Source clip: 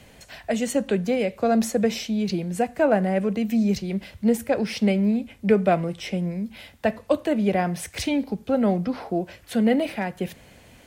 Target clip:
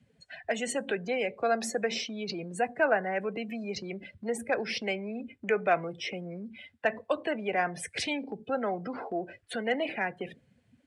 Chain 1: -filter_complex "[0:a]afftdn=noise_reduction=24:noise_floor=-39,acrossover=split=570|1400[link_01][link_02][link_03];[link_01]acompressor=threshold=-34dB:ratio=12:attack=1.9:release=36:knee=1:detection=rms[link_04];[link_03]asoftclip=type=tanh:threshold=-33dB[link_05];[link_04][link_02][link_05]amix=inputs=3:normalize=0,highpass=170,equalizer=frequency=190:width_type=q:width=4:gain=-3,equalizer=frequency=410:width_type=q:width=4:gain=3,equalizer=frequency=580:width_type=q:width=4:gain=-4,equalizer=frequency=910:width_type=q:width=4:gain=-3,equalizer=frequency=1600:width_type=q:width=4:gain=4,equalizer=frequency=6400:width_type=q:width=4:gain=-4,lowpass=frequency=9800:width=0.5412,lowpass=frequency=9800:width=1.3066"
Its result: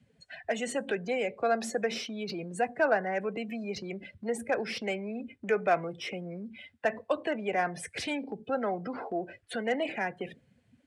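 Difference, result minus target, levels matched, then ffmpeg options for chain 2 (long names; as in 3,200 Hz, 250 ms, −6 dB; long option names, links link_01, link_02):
soft clipping: distortion +13 dB
-filter_complex "[0:a]afftdn=noise_reduction=24:noise_floor=-39,acrossover=split=570|1400[link_01][link_02][link_03];[link_01]acompressor=threshold=-34dB:ratio=12:attack=1.9:release=36:knee=1:detection=rms[link_04];[link_03]asoftclip=type=tanh:threshold=-22dB[link_05];[link_04][link_02][link_05]amix=inputs=3:normalize=0,highpass=170,equalizer=frequency=190:width_type=q:width=4:gain=-3,equalizer=frequency=410:width_type=q:width=4:gain=3,equalizer=frequency=580:width_type=q:width=4:gain=-4,equalizer=frequency=910:width_type=q:width=4:gain=-3,equalizer=frequency=1600:width_type=q:width=4:gain=4,equalizer=frequency=6400:width_type=q:width=4:gain=-4,lowpass=frequency=9800:width=0.5412,lowpass=frequency=9800:width=1.3066"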